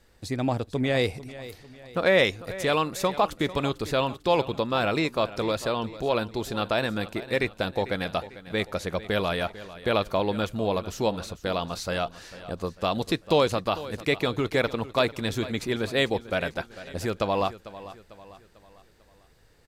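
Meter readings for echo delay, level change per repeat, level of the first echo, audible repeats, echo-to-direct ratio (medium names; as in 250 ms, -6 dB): 447 ms, -7.0 dB, -16.0 dB, 3, -15.0 dB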